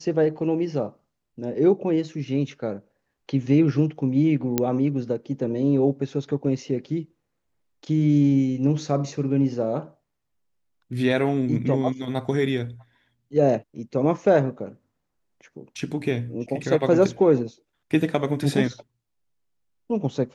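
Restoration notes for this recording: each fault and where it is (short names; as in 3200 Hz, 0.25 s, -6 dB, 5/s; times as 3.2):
4.58 pop -6 dBFS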